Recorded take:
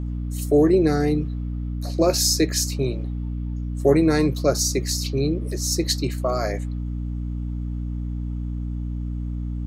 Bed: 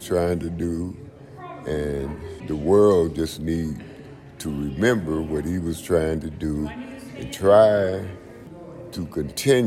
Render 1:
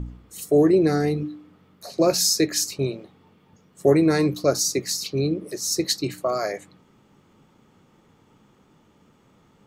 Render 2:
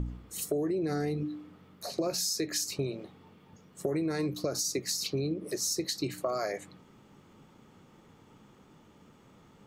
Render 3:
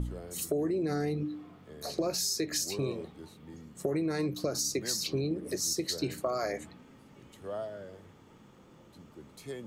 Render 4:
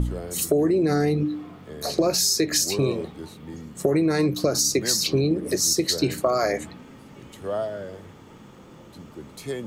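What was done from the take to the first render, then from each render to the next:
de-hum 60 Hz, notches 5
limiter -14 dBFS, peak gain reduction 8 dB; compressor 5:1, threshold -29 dBFS, peak gain reduction 10.5 dB
add bed -24 dB
gain +10 dB

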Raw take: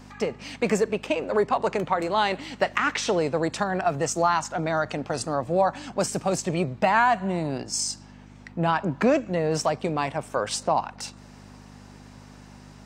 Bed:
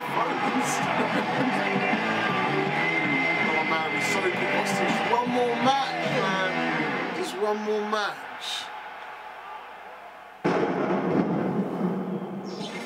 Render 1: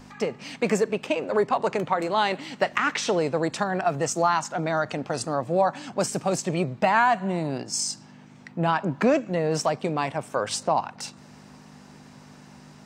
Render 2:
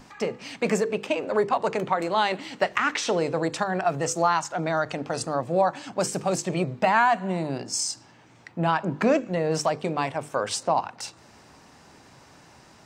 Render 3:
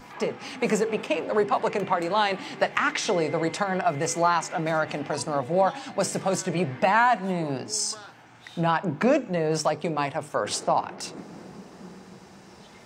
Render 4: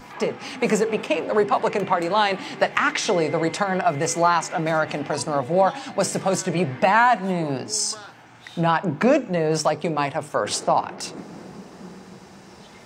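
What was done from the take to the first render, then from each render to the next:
de-hum 50 Hz, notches 2
notches 50/100/150/200/250/300/350/400/450/500 Hz
add bed -17.5 dB
gain +3.5 dB

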